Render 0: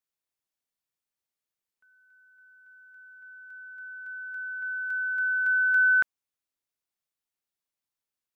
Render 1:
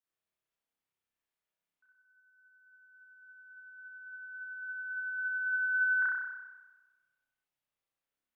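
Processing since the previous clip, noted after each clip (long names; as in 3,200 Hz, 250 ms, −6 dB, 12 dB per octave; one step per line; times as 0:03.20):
gate on every frequency bin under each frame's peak −30 dB strong
spring reverb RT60 1.2 s, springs 30 ms, chirp 65 ms, DRR −8 dB
level −6.5 dB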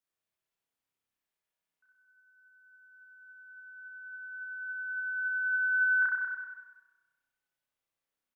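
repeating echo 192 ms, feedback 36%, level −8.5 dB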